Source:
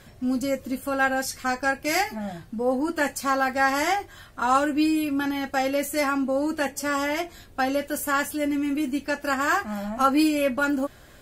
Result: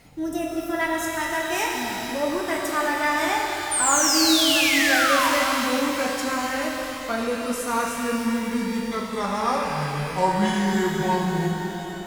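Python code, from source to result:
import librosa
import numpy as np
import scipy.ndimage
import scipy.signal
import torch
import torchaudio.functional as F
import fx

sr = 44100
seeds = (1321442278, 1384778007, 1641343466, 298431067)

y = fx.speed_glide(x, sr, from_pct=127, to_pct=59)
y = fx.spec_paint(y, sr, seeds[0], shape='fall', start_s=3.71, length_s=1.59, low_hz=920.0, high_hz=9300.0, level_db=-21.0)
y = fx.rev_shimmer(y, sr, seeds[1], rt60_s=3.3, semitones=12, shimmer_db=-8, drr_db=-1.0)
y = y * 10.0 ** (-3.5 / 20.0)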